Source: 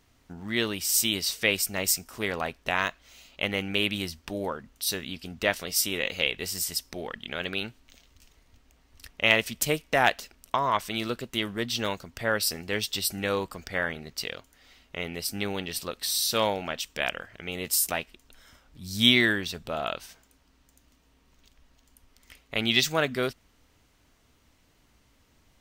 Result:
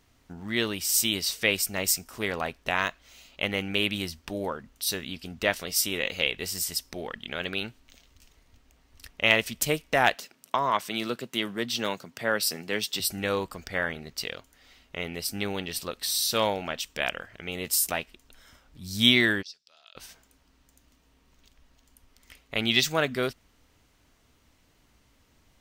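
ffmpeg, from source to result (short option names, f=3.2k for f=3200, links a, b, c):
-filter_complex "[0:a]asettb=1/sr,asplit=3[a][b][c];[a]atrim=end=10.144[d];[b]atrim=start=10.14:end=13,asetpts=PTS-STARTPTS,afade=t=in:d=0.004:c=qsin,afade=t=out:st=2.856:d=0.004:c=qsin,highpass=f=130:w=0.5412,highpass=f=130:w=1.3066[e];[c]atrim=start=12.996[f];[d][e]acrossfade=d=0.004:c1=hsin:c2=qsin[g];[g][f]acrossfade=d=0.004:c1=qsin:c2=hsin,asplit=3[h][i][j];[h]afade=t=out:st=19.41:d=0.02[k];[i]bandpass=f=5.1k:t=q:w=6.6,afade=t=in:st=19.41:d=0.02,afade=t=out:st=19.95:d=0.02[l];[j]afade=t=in:st=19.95:d=0.02[m];[k][l][m]amix=inputs=3:normalize=0"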